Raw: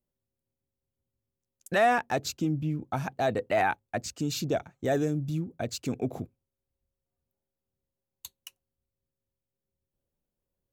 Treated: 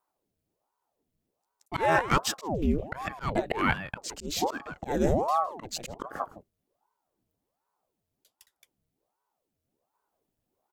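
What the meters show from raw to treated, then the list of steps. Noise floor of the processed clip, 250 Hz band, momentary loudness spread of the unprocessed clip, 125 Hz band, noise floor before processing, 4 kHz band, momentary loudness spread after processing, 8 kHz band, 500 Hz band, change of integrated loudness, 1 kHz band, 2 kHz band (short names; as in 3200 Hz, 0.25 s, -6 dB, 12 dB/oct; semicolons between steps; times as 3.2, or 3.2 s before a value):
-84 dBFS, -0.5 dB, 16 LU, -2.5 dB, under -85 dBFS, +2.5 dB, 13 LU, +2.0 dB, -1.5 dB, 0.0 dB, +1.5 dB, +0.5 dB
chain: echo 0.161 s -17 dB; auto swell 0.218 s; ring modulator with a swept carrier 530 Hz, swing 85%, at 1.3 Hz; gain +7.5 dB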